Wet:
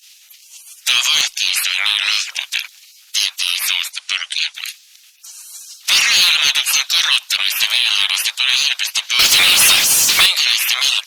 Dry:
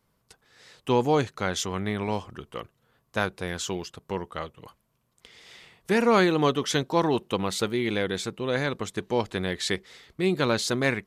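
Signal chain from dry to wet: 3.92–4.55 elliptic low-pass 10000 Hz, stop band 50 dB; spectral gate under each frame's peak -25 dB weak; HPF 1500 Hz 12 dB/oct; band shelf 4000 Hz +8 dB; in parallel at -0.5 dB: compressor, threshold -46 dBFS, peak gain reduction 19.5 dB; on the sum: soft clip -27 dBFS, distortion -11 dB; 9.19–10.26 power-law curve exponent 0.35; maximiser +32.5 dB; gain -4.5 dB; Opus 64 kbps 48000 Hz

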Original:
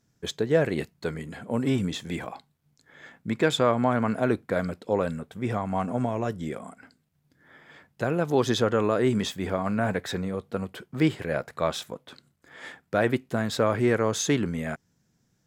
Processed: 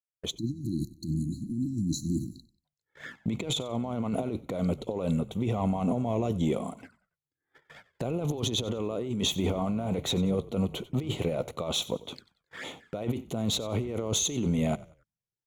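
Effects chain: opening faded in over 0.65 s; gate -50 dBFS, range -26 dB; negative-ratio compressor -31 dBFS, ratio -1; sample leveller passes 1; frequency-shifting echo 93 ms, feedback 32%, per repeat -34 Hz, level -19 dB; envelope flanger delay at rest 2.6 ms, full sweep at -32 dBFS; spectral delete 0.38–2.65, 360–3900 Hz; gain -1 dB

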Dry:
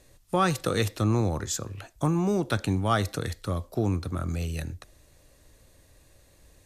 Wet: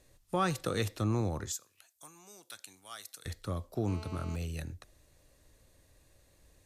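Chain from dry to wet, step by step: 1.52–3.26 differentiator; 3.88–4.36 GSM buzz -42 dBFS; gain -6.5 dB

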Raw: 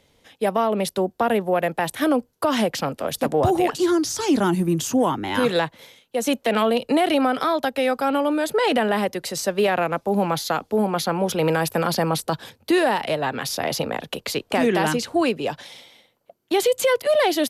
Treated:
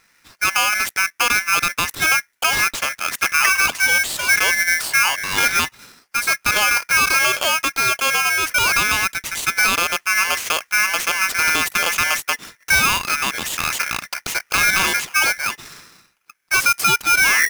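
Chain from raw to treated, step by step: tape stop at the end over 0.46 s; polarity switched at an audio rate 1900 Hz; gain +2.5 dB

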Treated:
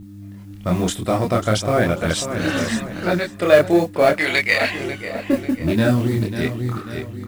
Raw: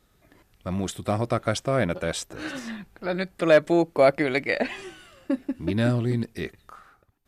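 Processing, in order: on a send: feedback echo 0.543 s, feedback 30%, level -11 dB; on the sum: AGC gain up to 16.5 dB; 4.17–4.69 tilt shelf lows -9.5 dB, about 890 Hz; buzz 100 Hz, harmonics 3, -34 dBFS -4 dB/oct; in parallel at -8.5 dB: hard clip -9.5 dBFS, distortion -12 dB; on the sum: modulation noise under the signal 28 dB; chorus voices 2, 0.97 Hz, delay 26 ms, depth 3 ms; gain -1.5 dB

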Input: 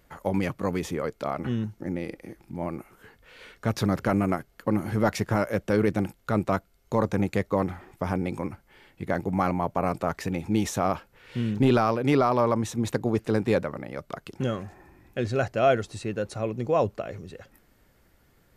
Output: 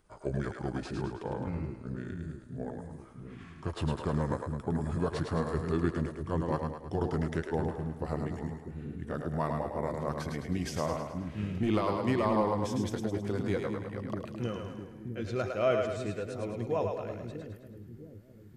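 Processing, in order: gliding pitch shift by -6 st ending unshifted; split-band echo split 350 Hz, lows 0.652 s, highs 0.106 s, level -4.5 dB; gain -6.5 dB

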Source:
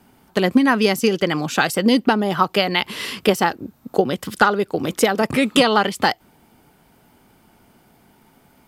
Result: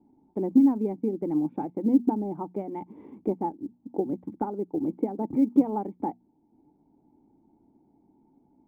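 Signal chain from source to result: notches 60/120/180/240 Hz; transient shaper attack -1 dB, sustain -5 dB; vocal tract filter u; short-mantissa float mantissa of 6-bit; gain +1.5 dB

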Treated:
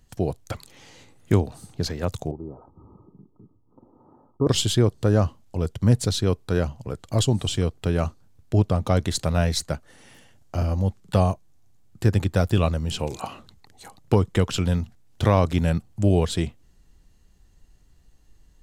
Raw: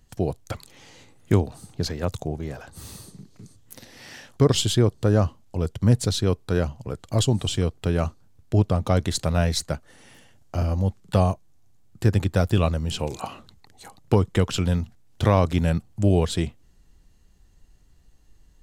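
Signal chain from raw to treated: 2.31–4.47 rippled Chebyshev low-pass 1300 Hz, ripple 9 dB

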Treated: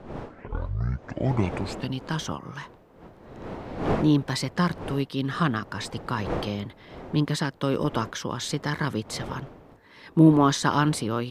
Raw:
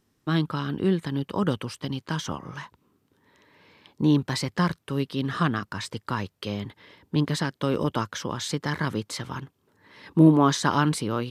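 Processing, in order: tape start at the beginning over 1.99 s; wind noise 560 Hz -38 dBFS

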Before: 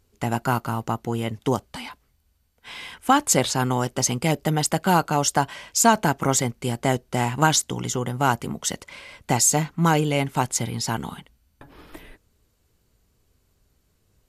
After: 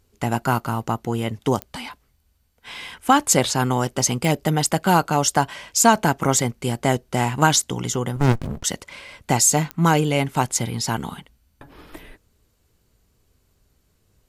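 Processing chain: pops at 1.62/4.25/9.71, -15 dBFS; 8.16–8.64 running maximum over 65 samples; gain +2 dB

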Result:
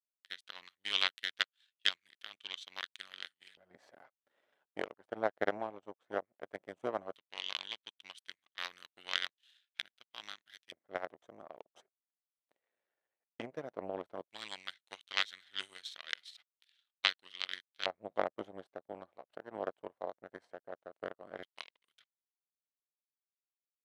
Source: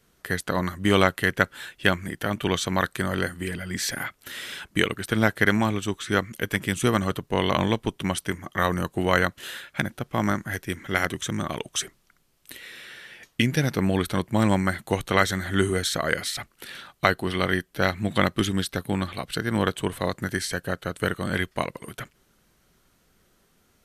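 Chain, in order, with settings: power-law curve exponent 2; LFO band-pass square 0.14 Hz 630–3500 Hz; gain +5 dB

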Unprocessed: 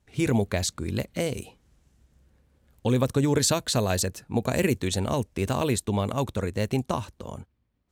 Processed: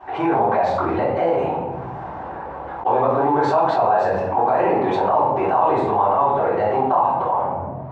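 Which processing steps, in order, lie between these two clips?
tilt -4.5 dB/oct; sample leveller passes 1; ladder band-pass 920 Hz, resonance 70%; shoebox room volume 89 m³, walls mixed, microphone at 3.7 m; fast leveller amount 70%

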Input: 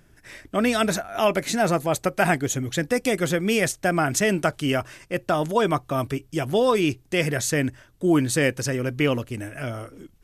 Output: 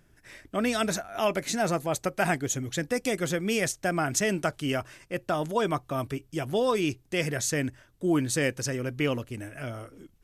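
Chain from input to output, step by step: dynamic EQ 6100 Hz, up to +4 dB, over -39 dBFS, Q 1.5; gain -5.5 dB

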